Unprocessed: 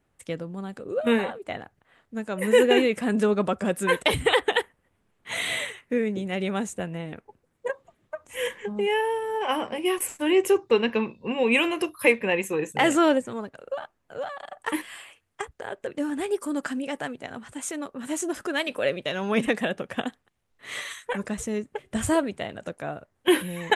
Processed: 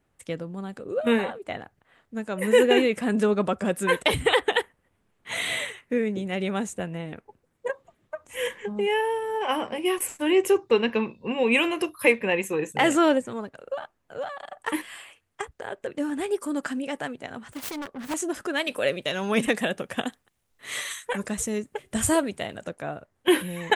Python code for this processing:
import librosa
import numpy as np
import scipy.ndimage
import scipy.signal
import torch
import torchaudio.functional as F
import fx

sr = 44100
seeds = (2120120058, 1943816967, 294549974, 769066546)

y = fx.self_delay(x, sr, depth_ms=0.69, at=(17.52, 18.14))
y = fx.high_shelf(y, sr, hz=5500.0, db=10.0, at=(18.67, 22.64))